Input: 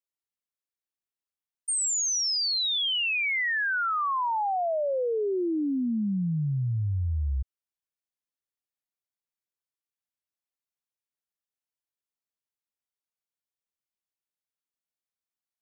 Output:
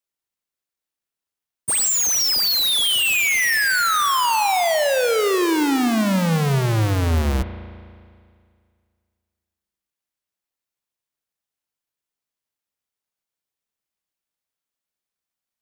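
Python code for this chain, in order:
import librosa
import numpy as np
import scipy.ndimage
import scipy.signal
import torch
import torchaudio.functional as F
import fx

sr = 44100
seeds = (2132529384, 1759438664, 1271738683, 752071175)

y = fx.halfwave_hold(x, sr)
y = fx.rev_spring(y, sr, rt60_s=2.1, pass_ms=(36,), chirp_ms=50, drr_db=9.5)
y = y * 10.0 ** (5.0 / 20.0)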